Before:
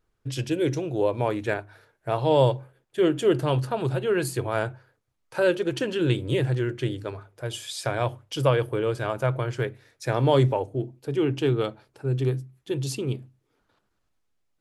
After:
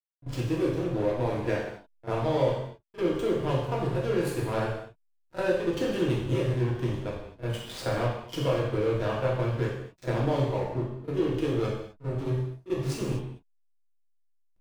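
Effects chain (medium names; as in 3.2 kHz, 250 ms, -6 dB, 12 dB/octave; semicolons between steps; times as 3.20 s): compression 5:1, threshold -24 dBFS, peak gain reduction 9 dB; hysteresis with a dead band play -26.5 dBFS; reverse echo 40 ms -15.5 dB; gated-style reverb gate 280 ms falling, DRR -5 dB; trim -3.5 dB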